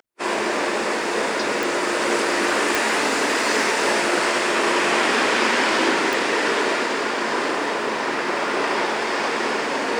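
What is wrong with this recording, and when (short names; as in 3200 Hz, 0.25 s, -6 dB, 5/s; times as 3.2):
1.63 pop
2.75 pop
6.13 pop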